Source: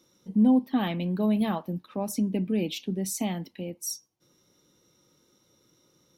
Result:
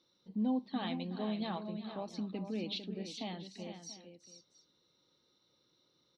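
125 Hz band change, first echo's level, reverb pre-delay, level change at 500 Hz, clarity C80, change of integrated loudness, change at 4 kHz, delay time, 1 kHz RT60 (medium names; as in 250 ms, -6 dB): -12.5 dB, -14.5 dB, no reverb, -9.5 dB, no reverb, -11.5 dB, -4.5 dB, 369 ms, no reverb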